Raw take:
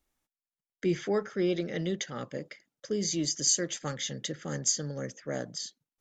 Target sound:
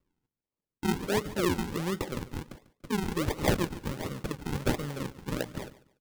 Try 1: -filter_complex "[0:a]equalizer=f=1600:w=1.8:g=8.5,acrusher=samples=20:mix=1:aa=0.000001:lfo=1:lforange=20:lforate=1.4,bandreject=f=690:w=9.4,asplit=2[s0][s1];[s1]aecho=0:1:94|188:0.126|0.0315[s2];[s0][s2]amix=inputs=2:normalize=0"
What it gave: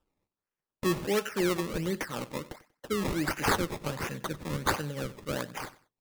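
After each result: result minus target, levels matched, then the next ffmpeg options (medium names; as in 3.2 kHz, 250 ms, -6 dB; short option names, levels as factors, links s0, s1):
decimation with a swept rate: distortion -11 dB; echo 51 ms early
-filter_complex "[0:a]equalizer=f=1600:w=1.8:g=8.5,acrusher=samples=52:mix=1:aa=0.000001:lfo=1:lforange=52:lforate=1.4,bandreject=f=690:w=9.4,asplit=2[s0][s1];[s1]aecho=0:1:94|188:0.126|0.0315[s2];[s0][s2]amix=inputs=2:normalize=0"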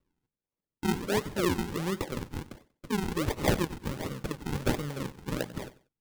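echo 51 ms early
-filter_complex "[0:a]equalizer=f=1600:w=1.8:g=8.5,acrusher=samples=52:mix=1:aa=0.000001:lfo=1:lforange=52:lforate=1.4,bandreject=f=690:w=9.4,asplit=2[s0][s1];[s1]aecho=0:1:145|290:0.126|0.0315[s2];[s0][s2]amix=inputs=2:normalize=0"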